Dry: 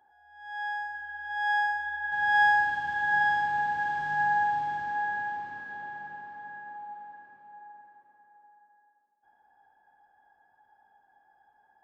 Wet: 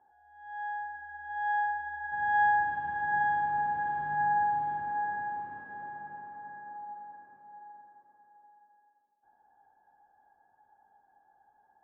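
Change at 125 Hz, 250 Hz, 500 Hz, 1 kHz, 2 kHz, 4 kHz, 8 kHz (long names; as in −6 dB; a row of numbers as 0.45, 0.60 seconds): 0.0 dB, 0.0 dB, 0.0 dB, −1.0 dB, −6.5 dB, below −15 dB, can't be measured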